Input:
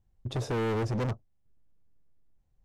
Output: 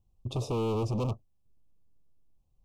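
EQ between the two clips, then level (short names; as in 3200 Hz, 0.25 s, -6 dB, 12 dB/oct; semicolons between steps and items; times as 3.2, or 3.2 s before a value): elliptic band-stop 1200–2500 Hz, stop band 60 dB; 0.0 dB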